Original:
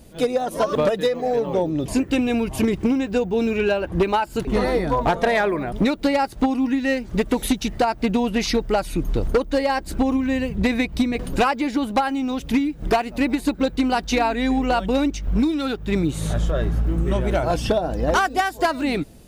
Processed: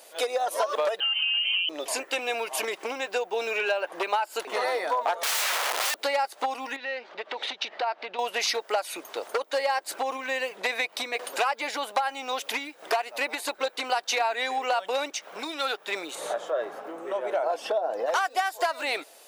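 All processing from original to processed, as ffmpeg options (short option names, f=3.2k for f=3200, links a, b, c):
-filter_complex "[0:a]asettb=1/sr,asplit=3[a][b][c];[a]atrim=end=1.004[d];[b]atrim=start=1:end=1.69,asetpts=PTS-STARTPTS,afade=t=in:d=0.004:c=qsin,afade=t=out:st=0.686:d=0.004:c=qsin,equalizer=f=1.5k:w=1.5:g=-3,acompressor=threshold=-24dB:ratio=6:attack=3.2:release=140:knee=1:detection=peak,lowpass=f=2.8k:t=q:w=0.5098,lowpass=f=2.8k:t=q:w=0.6013,lowpass=f=2.8k:t=q:w=0.9,lowpass=f=2.8k:t=q:w=2.563,afreqshift=-3300[e];[c]atrim=start=1.686[f];[d][e]acrossfade=d=0.004:c1=hsin:c2=qsin[g];[g][f]acrossfade=d=0.004:c1=qsin:c2=hsin,asettb=1/sr,asplit=3[h][i][j];[h]atrim=end=5.234[k];[i]atrim=start=5.23:end=6.01,asetpts=PTS-STARTPTS,afade=t=in:d=0.004:c=qsin,afade=t=out:st=0.776:d=0.004:c=qsin,lowshelf=f=320:g=7,aeval=exprs='(mod(11.9*val(0)+1,2)-1)/11.9':c=same[l];[j]atrim=start=6.006[m];[k][l]acrossfade=d=0.004:c1=hsin:c2=qsin[n];[n][m]acrossfade=d=0.004:c1=qsin:c2=hsin,asettb=1/sr,asplit=3[o][p][q];[o]atrim=end=6.764[r];[p]atrim=start=6.76:end=8.19,asetpts=PTS-STARTPTS,afade=t=in:d=0.004:c=qsin,afade=t=out:st=1.426:d=0.004:c=qsin,lowpass=f=4.2k:w=0.5412,lowpass=f=4.2k:w=1.3066,acompressor=threshold=-26dB:ratio=12:attack=3.2:release=140:knee=1:detection=peak[s];[q]atrim=start=8.186[t];[r][s]acrossfade=d=0.004:c1=hsin:c2=qsin[u];[u][t]acrossfade=d=0.004:c1=qsin:c2=hsin,asettb=1/sr,asplit=3[v][w][x];[v]atrim=end=16.154[y];[w]atrim=start=16.15:end=18.06,asetpts=PTS-STARTPTS,afade=t=in:d=0.004:c=qsin,afade=t=out:st=1.906:d=0.004:c=qsin,highpass=f=170:p=1,tiltshelf=f=1.3k:g=8.5[z];[x]atrim=start=18.056[aa];[y][z]acrossfade=d=0.004:c1=hsin:c2=qsin[ab];[ab][aa]acrossfade=d=0.004:c1=qsin:c2=hsin,alimiter=limit=-15.5dB:level=0:latency=1:release=431,highpass=f=570:w=0.5412,highpass=f=570:w=1.3066,acompressor=threshold=-28dB:ratio=4,volume=5dB"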